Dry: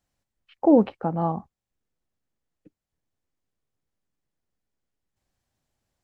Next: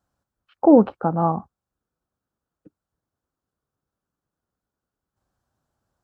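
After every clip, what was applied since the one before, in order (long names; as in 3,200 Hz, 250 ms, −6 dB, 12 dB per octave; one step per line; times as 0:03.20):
high-pass filter 40 Hz
high shelf with overshoot 1,700 Hz −6 dB, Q 3
level +3.5 dB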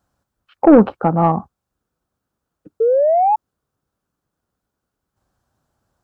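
sound drawn into the spectrogram rise, 0:02.80–0:03.36, 440–880 Hz −20 dBFS
soft clipping −7.5 dBFS, distortion −15 dB
level +6.5 dB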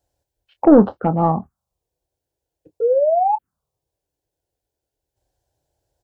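phaser swept by the level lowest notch 210 Hz, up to 2,400 Hz, full sweep at −11 dBFS
double-tracking delay 26 ms −12 dB
level −1 dB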